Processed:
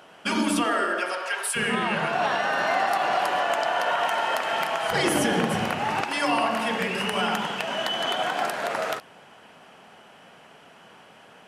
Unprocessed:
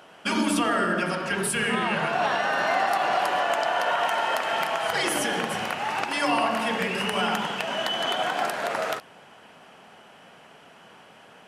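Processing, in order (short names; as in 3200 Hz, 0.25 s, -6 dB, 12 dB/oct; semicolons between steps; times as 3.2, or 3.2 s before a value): 0.64–1.55 HPF 240 Hz -> 690 Hz 24 dB/oct; 4.91–6.01 low shelf 390 Hz +11 dB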